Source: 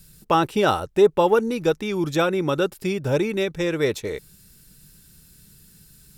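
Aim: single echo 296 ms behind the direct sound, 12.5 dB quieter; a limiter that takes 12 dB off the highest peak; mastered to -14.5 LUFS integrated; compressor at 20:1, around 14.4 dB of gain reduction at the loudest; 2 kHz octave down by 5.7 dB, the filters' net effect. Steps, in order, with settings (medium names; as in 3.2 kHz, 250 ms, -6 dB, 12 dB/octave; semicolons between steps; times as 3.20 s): peaking EQ 2 kHz -8.5 dB; compression 20:1, threshold -25 dBFS; peak limiter -27.5 dBFS; delay 296 ms -12.5 dB; trim +22 dB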